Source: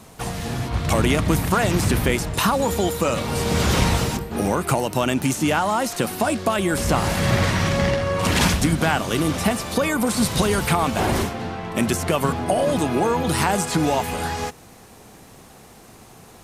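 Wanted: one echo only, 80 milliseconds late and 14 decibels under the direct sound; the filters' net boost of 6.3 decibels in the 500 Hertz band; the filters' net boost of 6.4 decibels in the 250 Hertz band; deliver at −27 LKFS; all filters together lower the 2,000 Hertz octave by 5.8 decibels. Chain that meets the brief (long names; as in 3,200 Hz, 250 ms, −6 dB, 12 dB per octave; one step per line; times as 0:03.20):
parametric band 250 Hz +6.5 dB
parametric band 500 Hz +6.5 dB
parametric band 2,000 Hz −8.5 dB
single-tap delay 80 ms −14 dB
level −9.5 dB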